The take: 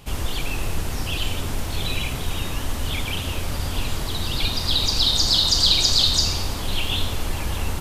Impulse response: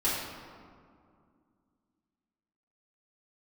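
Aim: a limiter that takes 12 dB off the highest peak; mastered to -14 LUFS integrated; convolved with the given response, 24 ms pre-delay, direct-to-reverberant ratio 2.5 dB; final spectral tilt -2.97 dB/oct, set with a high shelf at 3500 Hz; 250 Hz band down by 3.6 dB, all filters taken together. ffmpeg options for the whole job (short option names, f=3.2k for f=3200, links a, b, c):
-filter_complex "[0:a]equalizer=f=250:t=o:g=-5,highshelf=f=3.5k:g=4.5,alimiter=limit=-13.5dB:level=0:latency=1,asplit=2[a][b];[1:a]atrim=start_sample=2205,adelay=24[c];[b][c]afir=irnorm=-1:irlink=0,volume=-12.5dB[d];[a][d]amix=inputs=2:normalize=0,volume=8dB"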